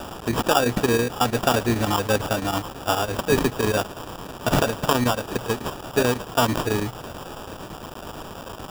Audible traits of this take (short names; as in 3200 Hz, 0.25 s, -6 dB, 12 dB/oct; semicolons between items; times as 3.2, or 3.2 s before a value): a quantiser's noise floor 6-bit, dither triangular; chopped level 9.1 Hz, depth 60%, duty 85%; aliases and images of a low sample rate 2100 Hz, jitter 0%